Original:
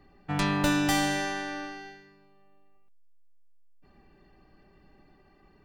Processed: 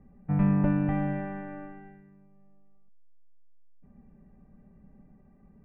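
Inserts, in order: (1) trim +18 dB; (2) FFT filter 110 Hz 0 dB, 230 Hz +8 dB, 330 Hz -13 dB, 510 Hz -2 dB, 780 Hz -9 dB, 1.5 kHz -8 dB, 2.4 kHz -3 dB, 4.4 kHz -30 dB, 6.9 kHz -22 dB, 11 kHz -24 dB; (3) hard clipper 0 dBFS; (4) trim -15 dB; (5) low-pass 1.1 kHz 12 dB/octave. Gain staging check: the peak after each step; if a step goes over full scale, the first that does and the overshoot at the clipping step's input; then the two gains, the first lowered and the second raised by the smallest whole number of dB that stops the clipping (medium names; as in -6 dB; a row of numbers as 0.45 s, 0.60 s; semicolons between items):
+5.5 dBFS, +5.0 dBFS, 0.0 dBFS, -15.0 dBFS, -15.0 dBFS; step 1, 5.0 dB; step 1 +13 dB, step 4 -10 dB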